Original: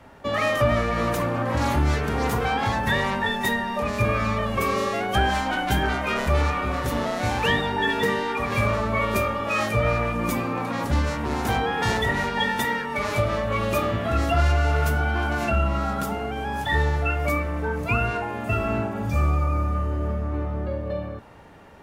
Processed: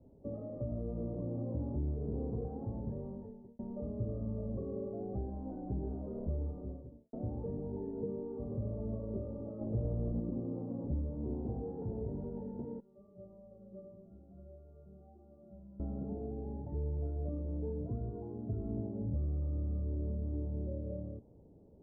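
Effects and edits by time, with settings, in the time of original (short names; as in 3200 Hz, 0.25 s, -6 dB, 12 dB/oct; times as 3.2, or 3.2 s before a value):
2.77–3.59 fade out linear
6.27–7.13 studio fade out
9.61–10.2 half-waves squared off
12.8–15.8 metallic resonator 190 Hz, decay 0.44 s, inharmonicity 0.002
18.09–18.77 bell 580 Hz -12.5 dB 0.2 oct
whole clip: compressor, threshold -22 dBFS; inverse Chebyshev low-pass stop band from 2200 Hz, stop band 70 dB; gain -8.5 dB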